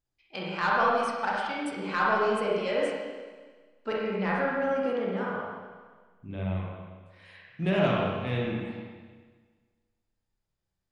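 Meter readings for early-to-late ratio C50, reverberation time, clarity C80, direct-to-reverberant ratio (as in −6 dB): −2.5 dB, 1.5 s, 0.5 dB, −5.0 dB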